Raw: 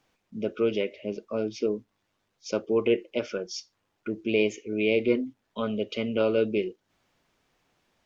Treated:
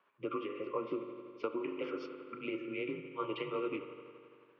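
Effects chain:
downward compressor, threshold −29 dBFS, peak gain reduction 11 dB
spring reverb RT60 3.8 s, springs 42 ms, chirp 45 ms, DRR 5 dB
time stretch by overlap-add 0.57×, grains 170 ms
frequency shifter −88 Hz
loudspeaker in its box 460–2,600 Hz, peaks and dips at 740 Hz −10 dB, 1,100 Hz +8 dB, 2,100 Hz −6 dB
level +2.5 dB

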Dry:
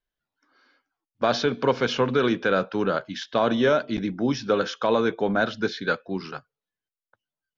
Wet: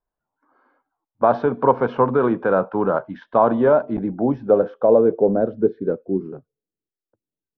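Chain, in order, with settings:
low-pass filter sweep 940 Hz → 370 Hz, 0:03.61–0:06.13
level +2.5 dB

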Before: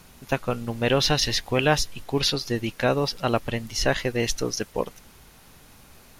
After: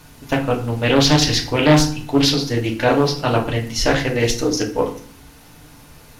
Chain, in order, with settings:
feedback delay network reverb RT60 0.49 s, low-frequency decay 1.5×, high-frequency decay 0.75×, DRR 0 dB
highs frequency-modulated by the lows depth 0.41 ms
level +3 dB

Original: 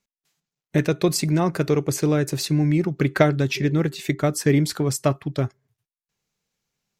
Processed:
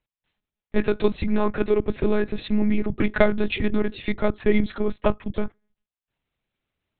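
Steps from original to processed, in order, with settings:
one-pitch LPC vocoder at 8 kHz 210 Hz

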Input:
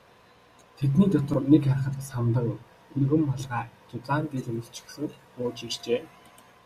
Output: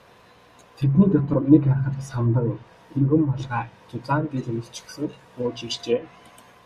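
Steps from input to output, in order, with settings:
treble cut that deepens with the level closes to 1,500 Hz, closed at −20.5 dBFS
level +4 dB

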